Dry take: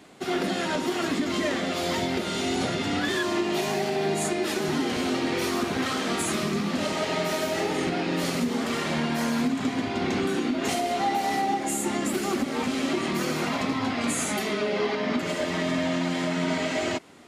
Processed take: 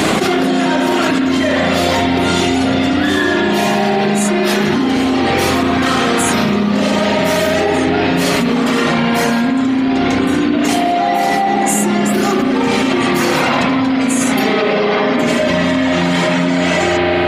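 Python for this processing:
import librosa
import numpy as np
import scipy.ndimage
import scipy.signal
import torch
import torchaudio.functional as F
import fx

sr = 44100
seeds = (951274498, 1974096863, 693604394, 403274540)

y = fx.dereverb_blind(x, sr, rt60_s=1.8)
y = fx.rev_spring(y, sr, rt60_s=2.3, pass_ms=(34, 53), chirp_ms=25, drr_db=-2.0)
y = fx.env_flatten(y, sr, amount_pct=100)
y = y * 10.0 ** (5.0 / 20.0)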